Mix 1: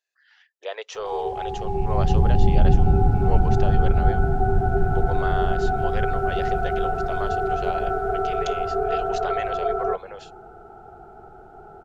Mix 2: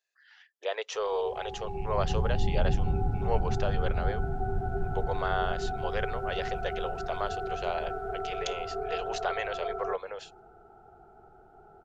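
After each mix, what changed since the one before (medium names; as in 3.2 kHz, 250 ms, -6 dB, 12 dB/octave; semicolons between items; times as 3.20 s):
background -10.5 dB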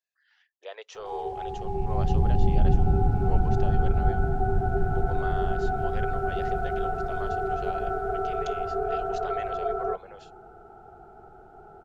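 speech -8.5 dB; background +6.0 dB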